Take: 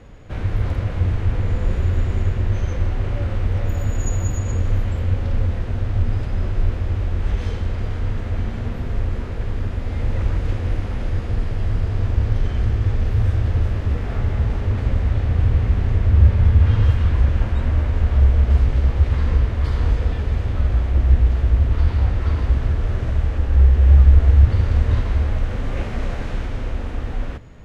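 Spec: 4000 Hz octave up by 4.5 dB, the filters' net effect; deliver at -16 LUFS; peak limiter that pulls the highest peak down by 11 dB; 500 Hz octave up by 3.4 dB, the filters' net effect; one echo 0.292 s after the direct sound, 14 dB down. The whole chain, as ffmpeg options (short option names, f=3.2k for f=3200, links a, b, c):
-af "equalizer=f=500:t=o:g=4,equalizer=f=4k:t=o:g=6,alimiter=limit=-12.5dB:level=0:latency=1,aecho=1:1:292:0.2,volume=7dB"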